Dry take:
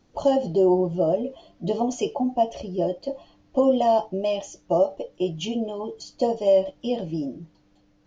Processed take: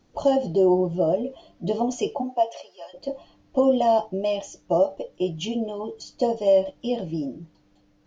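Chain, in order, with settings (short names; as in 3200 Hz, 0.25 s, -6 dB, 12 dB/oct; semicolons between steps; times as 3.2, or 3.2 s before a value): 2.21–2.93 HPF 270 Hz -> 1100 Hz 24 dB/oct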